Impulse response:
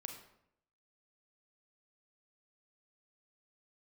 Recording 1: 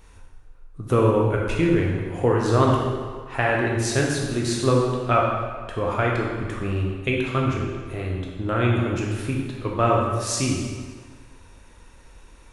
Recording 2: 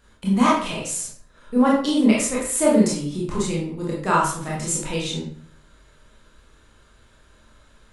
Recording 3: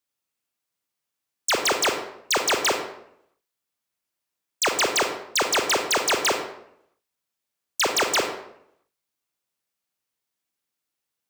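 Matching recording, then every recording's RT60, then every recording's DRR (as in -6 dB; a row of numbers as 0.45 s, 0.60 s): 3; 1.6 s, 0.55 s, 0.75 s; -2.5 dB, -5.5 dB, 4.0 dB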